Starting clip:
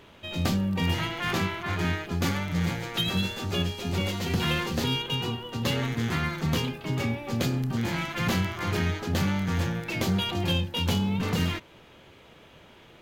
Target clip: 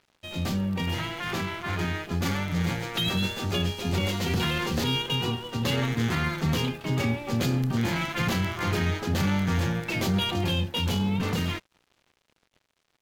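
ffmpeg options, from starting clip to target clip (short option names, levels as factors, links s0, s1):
-af "alimiter=limit=0.106:level=0:latency=1:release=13,dynaudnorm=f=330:g=13:m=1.41,aeval=exprs='sgn(val(0))*max(abs(val(0))-0.00422,0)':c=same"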